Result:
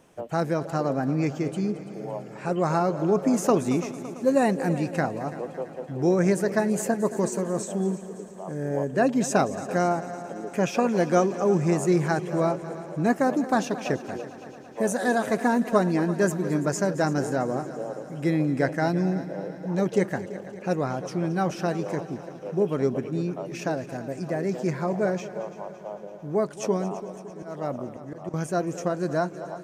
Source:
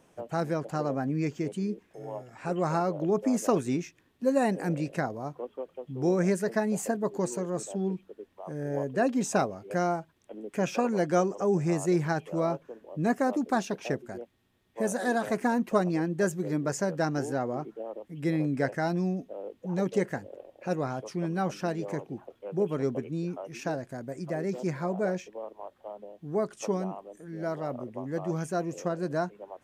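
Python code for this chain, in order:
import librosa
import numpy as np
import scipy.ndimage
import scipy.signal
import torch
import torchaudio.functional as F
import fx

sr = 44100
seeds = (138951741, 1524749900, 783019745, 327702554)

y = fx.auto_swell(x, sr, attack_ms=223.0, at=(27.12, 28.34))
y = fx.echo_heads(y, sr, ms=112, heads='second and third', feedback_pct=64, wet_db=-16)
y = y * 10.0 ** (4.0 / 20.0)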